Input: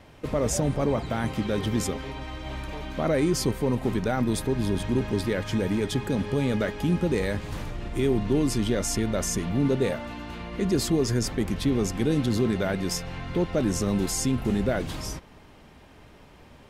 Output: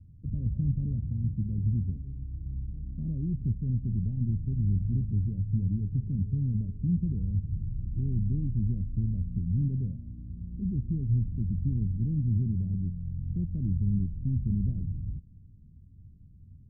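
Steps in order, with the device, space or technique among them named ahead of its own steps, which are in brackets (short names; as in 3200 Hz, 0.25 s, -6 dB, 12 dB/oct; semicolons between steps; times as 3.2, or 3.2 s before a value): the neighbour's flat through the wall (LPF 180 Hz 24 dB/oct; bell 93 Hz +7 dB 0.58 oct)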